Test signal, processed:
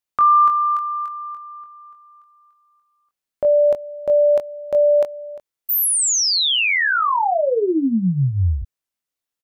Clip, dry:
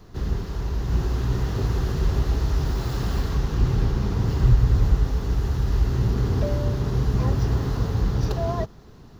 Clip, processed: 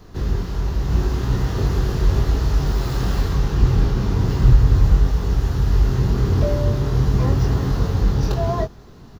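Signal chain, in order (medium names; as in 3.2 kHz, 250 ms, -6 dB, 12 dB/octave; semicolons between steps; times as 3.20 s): doubling 22 ms -5.5 dB; trim +3 dB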